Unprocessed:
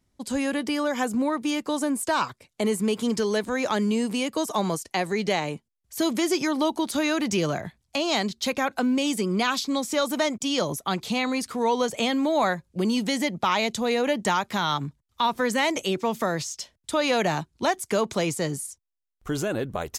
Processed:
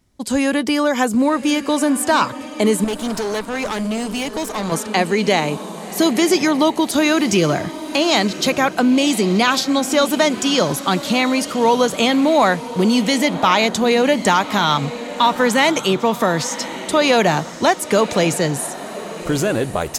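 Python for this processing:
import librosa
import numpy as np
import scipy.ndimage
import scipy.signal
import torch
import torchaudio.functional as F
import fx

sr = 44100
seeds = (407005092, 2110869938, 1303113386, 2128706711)

y = fx.echo_diffused(x, sr, ms=1090, feedback_pct=40, wet_db=-13)
y = fx.tube_stage(y, sr, drive_db=27.0, bias=0.75, at=(2.84, 4.72))
y = y * 10.0 ** (8.5 / 20.0)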